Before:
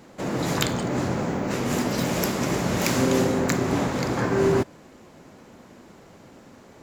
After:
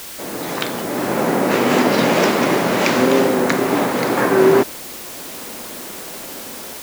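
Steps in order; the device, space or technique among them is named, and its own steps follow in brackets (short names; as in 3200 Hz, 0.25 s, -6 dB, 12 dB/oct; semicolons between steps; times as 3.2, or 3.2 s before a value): dictaphone (BPF 270–3900 Hz; AGC gain up to 14 dB; wow and flutter; white noise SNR 15 dB)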